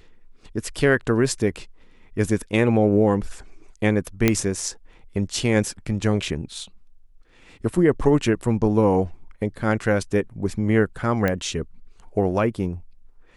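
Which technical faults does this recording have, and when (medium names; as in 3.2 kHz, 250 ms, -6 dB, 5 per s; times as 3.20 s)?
4.28 s: pop -3 dBFS
11.28 s: pop -10 dBFS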